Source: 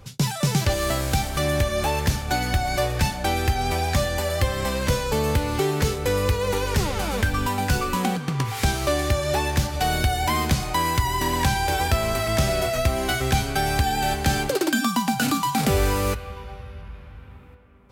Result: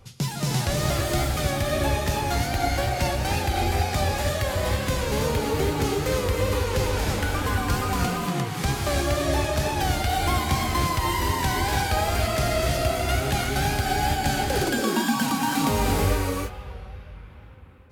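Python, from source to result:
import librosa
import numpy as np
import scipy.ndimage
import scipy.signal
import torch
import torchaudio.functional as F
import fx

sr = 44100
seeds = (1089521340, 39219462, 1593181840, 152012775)

y = fx.wow_flutter(x, sr, seeds[0], rate_hz=2.1, depth_cents=100.0)
y = fx.rev_gated(y, sr, seeds[1], gate_ms=360, shape='rising', drr_db=-1.5)
y = y * 10.0 ** (-5.0 / 20.0)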